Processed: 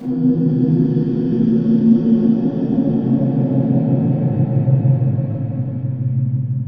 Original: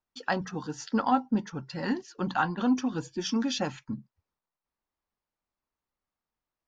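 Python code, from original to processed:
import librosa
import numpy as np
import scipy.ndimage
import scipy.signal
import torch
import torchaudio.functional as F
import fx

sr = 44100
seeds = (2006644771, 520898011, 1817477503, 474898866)

p1 = fx.env_lowpass_down(x, sr, base_hz=480.0, full_db=-26.5)
p2 = fx.peak_eq(p1, sr, hz=120.0, db=14.0, octaves=0.52)
p3 = fx.paulstretch(p2, sr, seeds[0], factor=4.9, window_s=1.0, from_s=2.92)
p4 = p3 + fx.echo_opening(p3, sr, ms=169, hz=400, octaves=1, feedback_pct=70, wet_db=0, dry=0)
p5 = fx.room_shoebox(p4, sr, seeds[1], volume_m3=170.0, walls='mixed', distance_m=5.7)
y = F.gain(torch.from_numpy(p5), -7.0).numpy()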